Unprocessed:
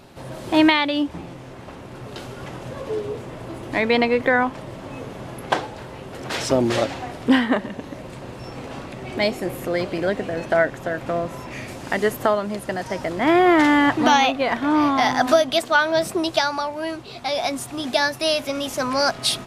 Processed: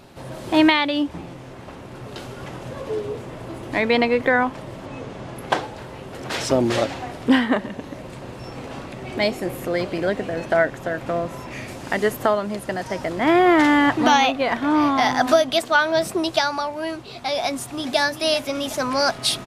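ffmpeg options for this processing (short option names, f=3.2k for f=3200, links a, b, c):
-filter_complex "[0:a]asettb=1/sr,asplit=3[a][b][c];[a]atrim=end=4.864[d];[b]atrim=start=4.86:end=5.36,asetpts=PTS-STARTPTS,afade=t=in:d=0.004:c=qsin,afade=t=out:st=0.496:d=0.004:c=qsin,lowpass=8k[e];[c]atrim=start=5.356[f];[d][e]acrossfade=d=0.004:c1=hsin:c2=qsin[g];[g][f]acrossfade=d=0.004:c1=qsin:c2=hsin,asplit=2[h][i];[i]afade=t=in:st=17.48:d=0.01,afade=t=out:st=17.99:d=0.01,aecho=0:1:380|760|1140|1520|1900|2280|2660:0.251189|0.150713|0.0904279|0.0542567|0.032554|0.0195324|0.0117195[j];[h][j]amix=inputs=2:normalize=0"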